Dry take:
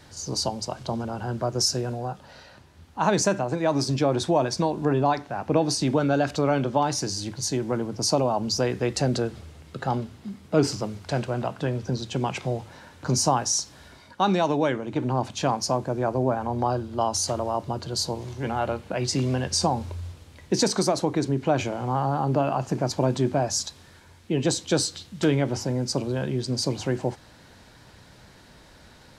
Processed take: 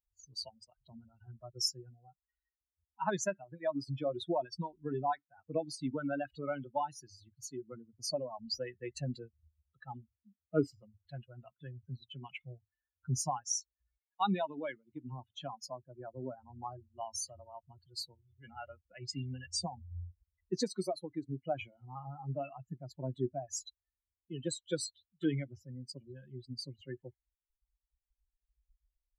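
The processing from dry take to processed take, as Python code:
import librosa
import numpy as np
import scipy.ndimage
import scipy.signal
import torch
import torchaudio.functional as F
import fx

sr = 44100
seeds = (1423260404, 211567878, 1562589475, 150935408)

y = fx.bin_expand(x, sr, power=3.0)
y = y * librosa.db_to_amplitude(-5.0)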